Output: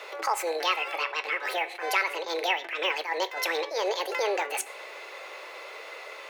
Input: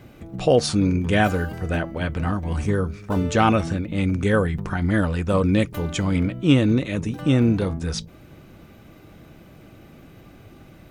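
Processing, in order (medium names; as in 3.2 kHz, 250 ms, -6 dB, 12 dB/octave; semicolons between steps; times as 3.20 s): steep high-pass 240 Hz 48 dB/octave; peaking EQ 1.2 kHz +13.5 dB 1.4 oct; compression 3:1, threshold -31 dBFS, peak gain reduction 19.5 dB; reverberation RT60 1.1 s, pre-delay 7 ms, DRR 11.5 dB; speed mistake 45 rpm record played at 78 rpm; attacks held to a fixed rise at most 150 dB/s; trim +3 dB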